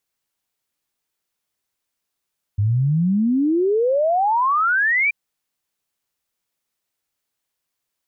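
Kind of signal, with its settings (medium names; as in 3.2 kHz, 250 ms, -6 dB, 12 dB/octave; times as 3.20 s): log sweep 98 Hz -> 2.4 kHz 2.53 s -15 dBFS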